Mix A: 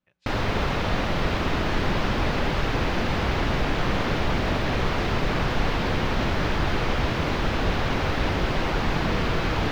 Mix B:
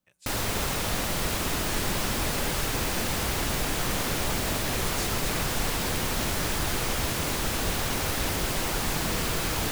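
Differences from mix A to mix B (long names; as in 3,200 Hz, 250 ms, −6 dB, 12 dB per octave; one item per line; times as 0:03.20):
background −6.0 dB
master: remove high-frequency loss of the air 260 metres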